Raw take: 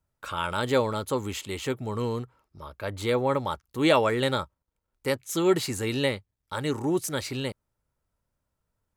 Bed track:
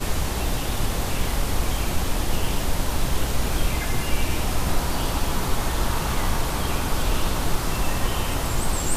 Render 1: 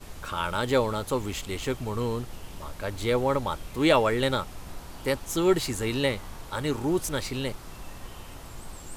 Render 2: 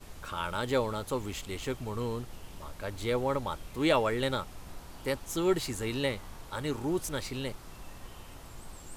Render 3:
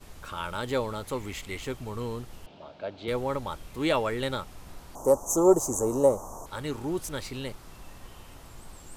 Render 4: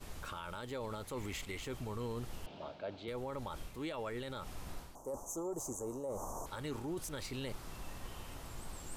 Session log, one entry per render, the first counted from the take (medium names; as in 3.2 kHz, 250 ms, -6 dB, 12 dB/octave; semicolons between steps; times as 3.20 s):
add bed track -18 dB
trim -5 dB
1.04–1.62 s: peaking EQ 2.1 kHz +8.5 dB 0.35 oct; 2.46–3.08 s: cabinet simulation 170–4100 Hz, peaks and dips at 650 Hz +9 dB, 1.1 kHz -7 dB, 1.9 kHz -9 dB; 4.95–6.46 s: FFT filter 130 Hz 0 dB, 400 Hz +8 dB, 580 Hz +14 dB, 1.1 kHz +10 dB, 2 kHz -23 dB, 4.3 kHz -21 dB, 6.2 kHz +14 dB, 10 kHz +7 dB
reverse; compression 8:1, threshold -35 dBFS, peak gain reduction 20.5 dB; reverse; peak limiter -32.5 dBFS, peak gain reduction 7.5 dB